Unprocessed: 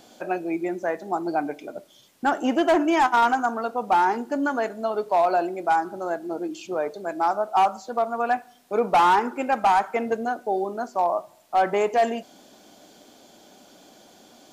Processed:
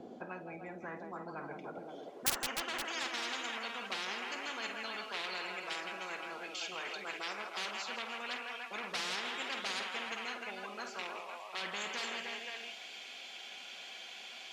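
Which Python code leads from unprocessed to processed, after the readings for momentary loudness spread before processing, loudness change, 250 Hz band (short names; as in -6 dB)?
10 LU, -15.5 dB, -21.5 dB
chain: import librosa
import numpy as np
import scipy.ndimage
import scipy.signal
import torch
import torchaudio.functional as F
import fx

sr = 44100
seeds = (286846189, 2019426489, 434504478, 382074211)

p1 = fx.filter_sweep_bandpass(x, sr, from_hz=290.0, to_hz=2500.0, start_s=1.28, end_s=3.24, q=3.9)
p2 = (np.mod(10.0 ** (16.5 / 20.0) * p1 + 1.0, 2.0) - 1.0) / 10.0 ** (16.5 / 20.0)
p3 = p1 + (p2 * 10.0 ** (-6.0 / 20.0))
p4 = fx.notch_comb(p3, sr, f0_hz=300.0)
p5 = fx.echo_multitap(p4, sr, ms=(49, 164, 302, 519), db=(-12.0, -14.0, -16.0, -19.0))
p6 = fx.spectral_comp(p5, sr, ratio=10.0)
y = p6 * 10.0 ** (2.0 / 20.0)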